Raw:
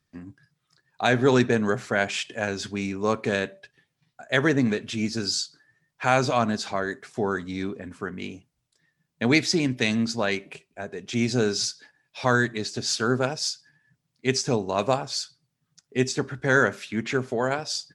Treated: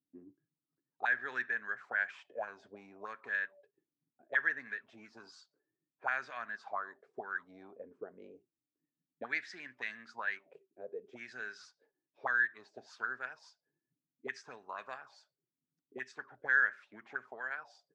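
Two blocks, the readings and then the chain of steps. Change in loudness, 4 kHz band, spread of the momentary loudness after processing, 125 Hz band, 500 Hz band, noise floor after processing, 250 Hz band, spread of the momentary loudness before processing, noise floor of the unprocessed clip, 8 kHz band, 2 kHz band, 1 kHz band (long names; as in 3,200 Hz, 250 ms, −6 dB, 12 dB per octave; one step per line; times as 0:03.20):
−12.0 dB, −27.0 dB, 21 LU, below −35 dB, −22.5 dB, below −85 dBFS, −31.0 dB, 13 LU, −78 dBFS, below −30 dB, −6.0 dB, −13.5 dB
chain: envelope filter 280–1,700 Hz, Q 7, up, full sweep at −20.5 dBFS
level −1.5 dB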